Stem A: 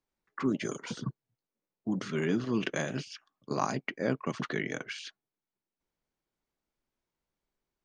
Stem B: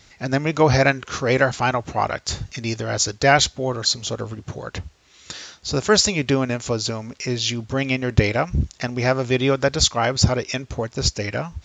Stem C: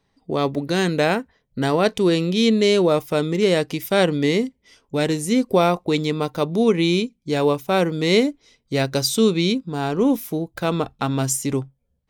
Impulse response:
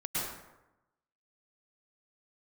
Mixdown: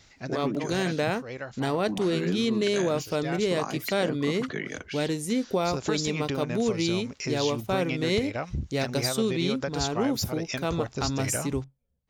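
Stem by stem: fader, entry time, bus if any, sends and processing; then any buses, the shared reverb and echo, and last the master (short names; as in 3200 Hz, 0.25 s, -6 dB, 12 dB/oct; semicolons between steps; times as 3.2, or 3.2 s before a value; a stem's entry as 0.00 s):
+2.5 dB, 0.00 s, bus A, no send, low-pass opened by the level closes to 2700 Hz, open at -29 dBFS; three-band expander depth 100%
-4.5 dB, 0.00 s, bus A, no send, auto duck -15 dB, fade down 0.75 s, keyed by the first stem
-6.5 dB, 0.00 s, no bus, no send, dry
bus A: 0.0 dB, compressor 6:1, threshold -27 dBFS, peak gain reduction 13.5 dB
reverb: off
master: compressor, threshold -21 dBFS, peak gain reduction 5 dB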